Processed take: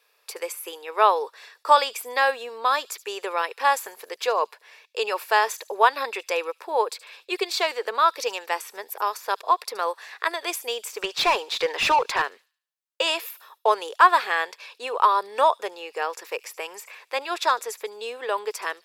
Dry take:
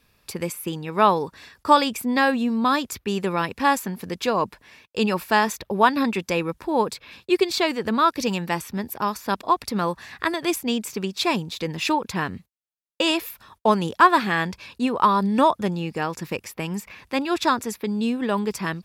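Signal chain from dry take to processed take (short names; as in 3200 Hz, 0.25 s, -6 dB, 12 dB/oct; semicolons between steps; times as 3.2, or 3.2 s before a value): elliptic high-pass 440 Hz, stop band 70 dB; 11.02–12.22 overdrive pedal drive 19 dB, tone 2600 Hz, clips at -11 dBFS; thin delay 74 ms, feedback 39%, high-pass 4400 Hz, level -15.5 dB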